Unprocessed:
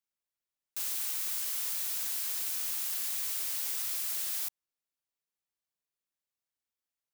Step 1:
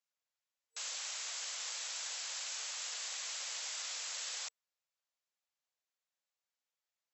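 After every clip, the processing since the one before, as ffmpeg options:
-af "afftfilt=real='re*between(b*sr/4096,460,7800)':imag='im*between(b*sr/4096,460,7800)':win_size=4096:overlap=0.75,volume=1.12"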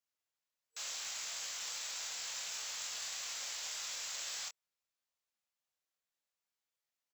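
-filter_complex "[0:a]asplit=2[s0][s1];[s1]adelay=24,volume=0.631[s2];[s0][s2]amix=inputs=2:normalize=0,acrusher=bits=3:mode=log:mix=0:aa=0.000001,volume=0.794"

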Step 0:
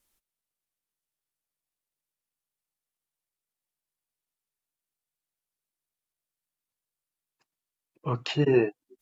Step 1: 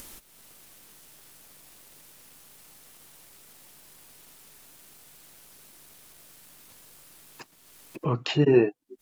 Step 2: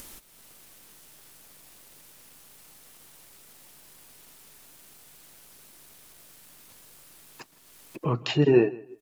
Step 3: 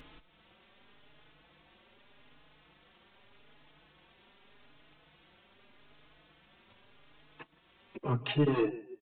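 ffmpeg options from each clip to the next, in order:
-af "equalizer=f=250:w=0.69:g=4,acompressor=mode=upward:threshold=0.0708:ratio=2.5"
-af "aecho=1:1:162|324:0.0891|0.0178"
-filter_complex "[0:a]aresample=8000,asoftclip=type=tanh:threshold=0.106,aresample=44100,asplit=2[s0][s1];[s1]adelay=4.3,afreqshift=0.83[s2];[s0][s2]amix=inputs=2:normalize=1"

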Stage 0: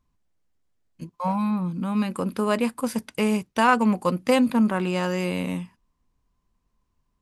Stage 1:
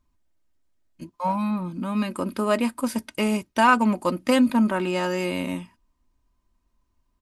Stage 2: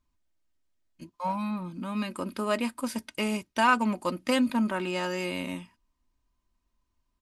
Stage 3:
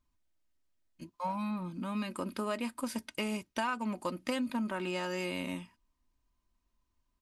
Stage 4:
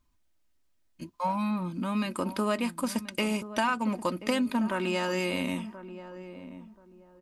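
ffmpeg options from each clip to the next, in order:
-af "aecho=1:1:3.2:0.49"
-af "equalizer=f=3800:t=o:w=2.8:g=4.5,volume=0.473"
-af "acompressor=threshold=0.0355:ratio=4,volume=0.794"
-filter_complex "[0:a]asplit=2[s0][s1];[s1]adelay=1031,lowpass=f=850:p=1,volume=0.251,asplit=2[s2][s3];[s3]adelay=1031,lowpass=f=850:p=1,volume=0.28,asplit=2[s4][s5];[s5]adelay=1031,lowpass=f=850:p=1,volume=0.28[s6];[s0][s2][s4][s6]amix=inputs=4:normalize=0,volume=2"

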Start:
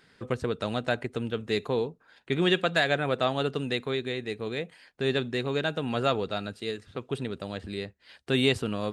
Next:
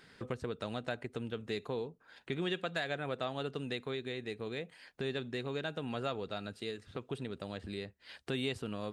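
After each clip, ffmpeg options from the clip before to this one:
-af "acompressor=threshold=0.00631:ratio=2,volume=1.12"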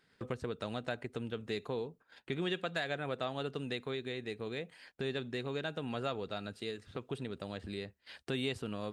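-af "agate=range=0.251:threshold=0.00141:ratio=16:detection=peak"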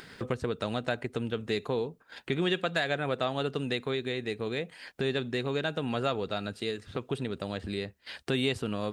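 -af "acompressor=mode=upward:threshold=0.00631:ratio=2.5,volume=2.24"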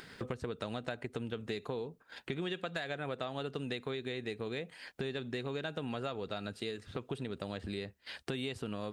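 -af "acompressor=threshold=0.0282:ratio=6,volume=0.708"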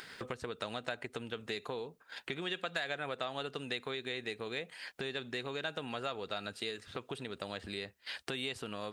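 -af "lowshelf=f=450:g=-11.5,volume=1.58"

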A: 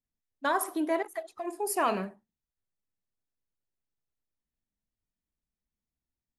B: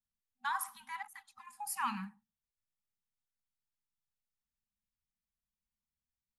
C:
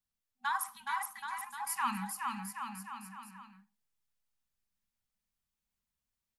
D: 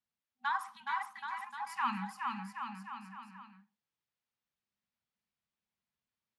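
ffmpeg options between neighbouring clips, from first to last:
-af "afftfilt=real='re*(1-between(b*sr/4096,250,770))':imag='im*(1-between(b*sr/4096,250,770))':win_size=4096:overlap=0.75,volume=0.501"
-af "aecho=1:1:420|777|1080|1338|1558:0.631|0.398|0.251|0.158|0.1,volume=1.26"
-af "highpass=110,lowpass=4100"

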